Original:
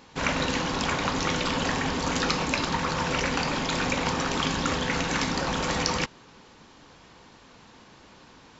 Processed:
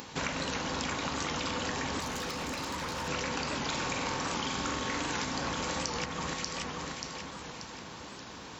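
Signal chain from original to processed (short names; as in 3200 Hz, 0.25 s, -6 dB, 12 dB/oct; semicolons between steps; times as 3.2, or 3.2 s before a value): 3.61–5.25 flutter echo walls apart 7.8 m, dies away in 0.63 s; upward compressor, threshold -40 dBFS; HPF 51 Hz; high shelf 6600 Hz +8.5 dB; on a send: echo with dull and thin repeats by turns 0.292 s, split 1800 Hz, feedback 66%, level -5 dB; on the sum: compressor 6:1, threshold -31 dBFS, peak gain reduction 13 dB; 2–3.08 hard clip -32.5 dBFS, distortion -17 dB; record warp 78 rpm, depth 100 cents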